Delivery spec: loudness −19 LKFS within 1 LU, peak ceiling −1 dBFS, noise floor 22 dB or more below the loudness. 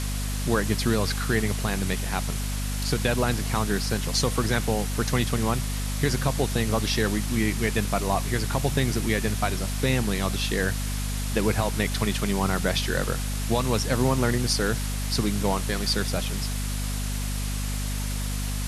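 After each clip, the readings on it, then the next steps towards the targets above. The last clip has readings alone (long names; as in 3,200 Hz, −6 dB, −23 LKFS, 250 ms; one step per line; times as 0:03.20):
mains hum 50 Hz; hum harmonics up to 250 Hz; level of the hum −26 dBFS; background noise floor −28 dBFS; target noise floor −48 dBFS; integrated loudness −26.0 LKFS; sample peak −9.5 dBFS; target loudness −19.0 LKFS
→ hum removal 50 Hz, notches 5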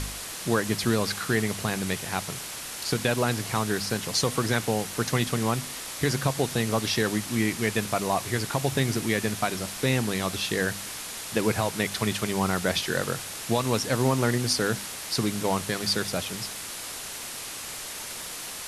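mains hum none found; background noise floor −37 dBFS; target noise floor −49 dBFS
→ broadband denoise 12 dB, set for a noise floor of −37 dBFS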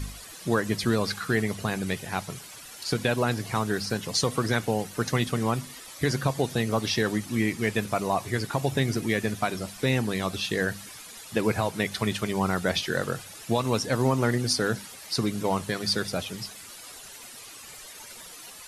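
background noise floor −45 dBFS; target noise floor −50 dBFS
→ broadband denoise 6 dB, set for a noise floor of −45 dBFS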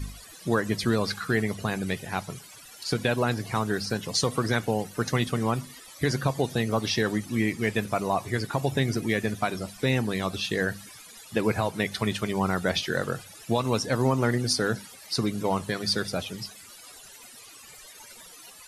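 background noise floor −48 dBFS; target noise floor −50 dBFS
→ broadband denoise 6 dB, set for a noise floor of −48 dBFS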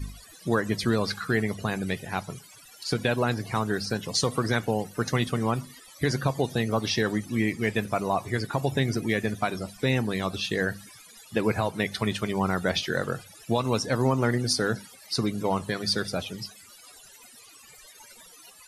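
background noise floor −51 dBFS; integrated loudness −27.5 LKFS; sample peak −11.0 dBFS; target loudness −19.0 LKFS
→ level +8.5 dB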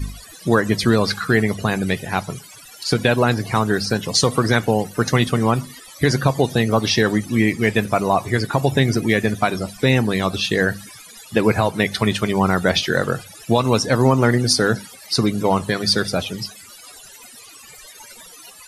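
integrated loudness −19.0 LKFS; sample peak −2.5 dBFS; background noise floor −43 dBFS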